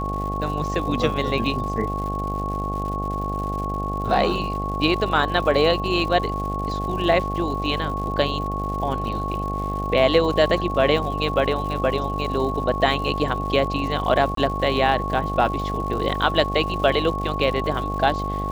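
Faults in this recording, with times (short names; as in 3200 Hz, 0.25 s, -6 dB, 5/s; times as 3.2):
buzz 50 Hz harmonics 17 -28 dBFS
crackle 190/s -32 dBFS
tone 1100 Hz -27 dBFS
14.35–14.37 gap 23 ms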